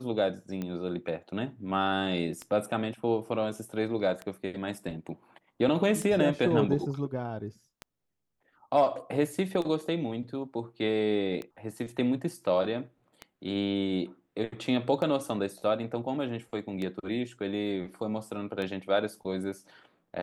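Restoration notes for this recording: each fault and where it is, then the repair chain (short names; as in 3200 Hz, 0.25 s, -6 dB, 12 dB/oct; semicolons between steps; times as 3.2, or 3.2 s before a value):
tick 33 1/3 rpm -22 dBFS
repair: de-click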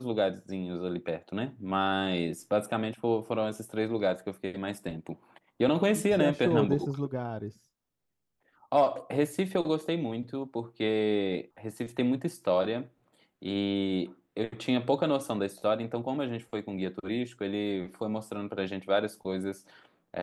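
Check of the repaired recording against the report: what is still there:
none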